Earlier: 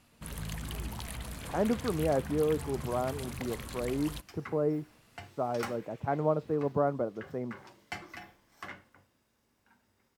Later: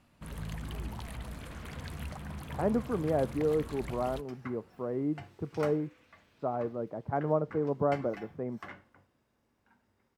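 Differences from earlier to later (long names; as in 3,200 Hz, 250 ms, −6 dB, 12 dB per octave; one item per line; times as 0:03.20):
speech: entry +1.05 s
master: add high-shelf EQ 3,100 Hz −10 dB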